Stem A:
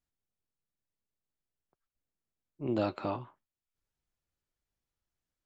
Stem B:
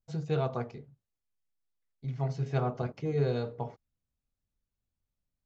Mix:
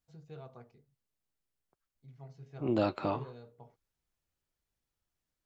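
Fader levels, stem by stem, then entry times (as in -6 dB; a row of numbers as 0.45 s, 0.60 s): +1.5 dB, -18.5 dB; 0.00 s, 0.00 s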